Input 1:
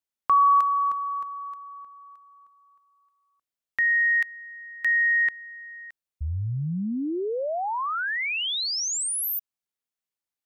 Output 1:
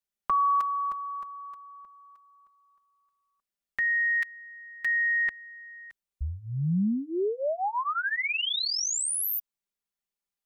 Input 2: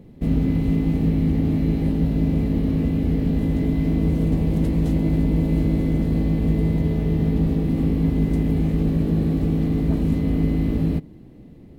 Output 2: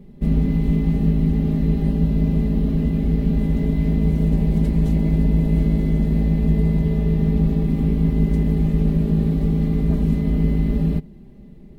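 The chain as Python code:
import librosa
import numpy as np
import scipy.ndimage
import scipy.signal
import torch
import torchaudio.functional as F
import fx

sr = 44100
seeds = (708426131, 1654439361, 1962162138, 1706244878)

y = fx.low_shelf(x, sr, hz=110.0, db=8.0)
y = y + 0.91 * np.pad(y, (int(5.0 * sr / 1000.0), 0))[:len(y)]
y = F.gain(torch.from_numpy(y), -4.0).numpy()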